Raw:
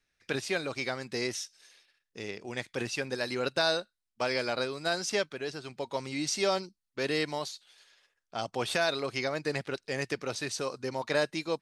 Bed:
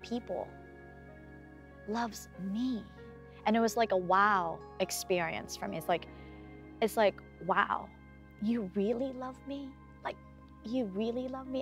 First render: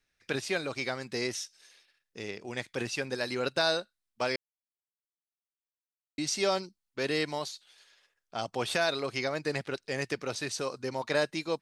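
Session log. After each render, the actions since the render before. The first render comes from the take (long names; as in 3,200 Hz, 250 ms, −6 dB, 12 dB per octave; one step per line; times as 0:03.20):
0:04.36–0:06.18: silence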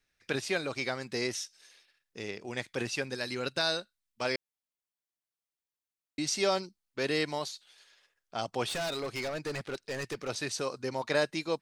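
0:03.04–0:04.25: parametric band 670 Hz −5 dB 2.3 octaves
0:08.69–0:10.29: gain into a clipping stage and back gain 31 dB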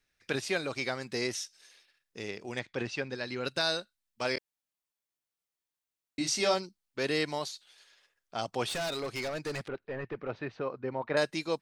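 0:02.59–0:03.45: high-frequency loss of the air 130 metres
0:04.34–0:06.54: double-tracking delay 24 ms −5 dB
0:09.68–0:11.17: Bessel low-pass filter 1,700 Hz, order 4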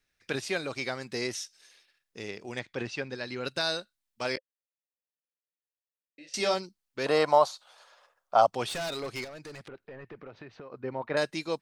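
0:04.37–0:06.34: formant filter e
0:07.06–0:08.47: flat-topped bell 830 Hz +15.5 dB
0:09.24–0:10.72: downward compressor 10 to 1, threshold −41 dBFS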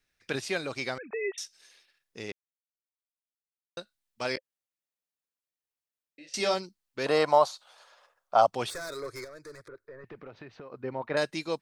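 0:00.98–0:01.38: three sine waves on the formant tracks
0:02.32–0:03.77: silence
0:08.70–0:10.04: phaser with its sweep stopped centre 780 Hz, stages 6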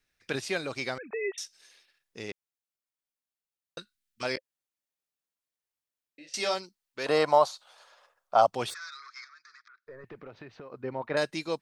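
0:03.78–0:04.23: Butterworth band-reject 660 Hz, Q 0.73
0:06.32–0:07.09: low-shelf EQ 350 Hz −9.5 dB
0:08.74–0:09.87: elliptic band-pass filter 1,200–5,600 Hz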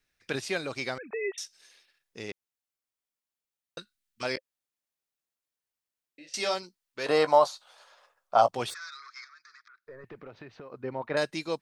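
0:06.61–0:08.60: double-tracking delay 17 ms −11.5 dB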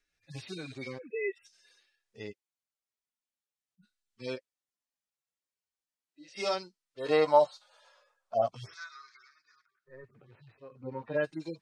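harmonic-percussive split with one part muted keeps harmonic
Chebyshev low-pass filter 8,200 Hz, order 2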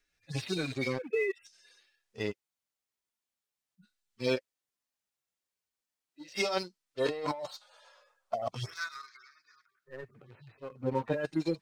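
leveller curve on the samples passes 1
compressor whose output falls as the input rises −31 dBFS, ratio −1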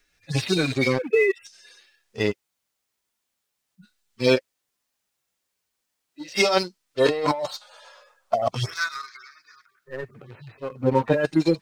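level +11 dB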